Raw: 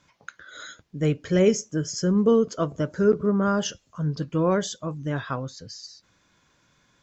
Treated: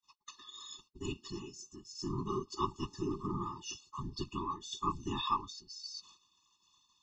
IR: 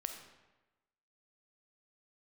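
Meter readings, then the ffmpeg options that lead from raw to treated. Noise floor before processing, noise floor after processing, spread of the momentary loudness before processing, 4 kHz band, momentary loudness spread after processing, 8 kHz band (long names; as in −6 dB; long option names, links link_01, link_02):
−65 dBFS, −75 dBFS, 19 LU, −5.5 dB, 12 LU, can't be measured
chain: -filter_complex "[0:a]asplit=2[link_01][link_02];[link_02]alimiter=limit=-18dB:level=0:latency=1,volume=3dB[link_03];[link_01][link_03]amix=inputs=2:normalize=0,aexciter=amount=15.4:drive=9.1:freq=3600,areverse,acompressor=threshold=-17dB:ratio=20,areverse,asplit=3[link_04][link_05][link_06];[link_04]bandpass=frequency=730:width_type=q:width=8,volume=0dB[link_07];[link_05]bandpass=frequency=1090:width_type=q:width=8,volume=-6dB[link_08];[link_06]bandpass=frequency=2440:width_type=q:width=8,volume=-9dB[link_09];[link_07][link_08][link_09]amix=inputs=3:normalize=0,agate=range=-37dB:threshold=-57dB:ratio=16:detection=peak,lowshelf=frequency=220:gain=-9.5,afftfilt=real='hypot(re,im)*cos(2*PI*random(0))':imag='hypot(re,im)*sin(2*PI*random(1))':win_size=512:overlap=0.75,aemphasis=mode=reproduction:type=bsi,afftfilt=real='re*eq(mod(floor(b*sr/1024/420),2),0)':imag='im*eq(mod(floor(b*sr/1024/420),2),0)':win_size=1024:overlap=0.75,volume=14dB"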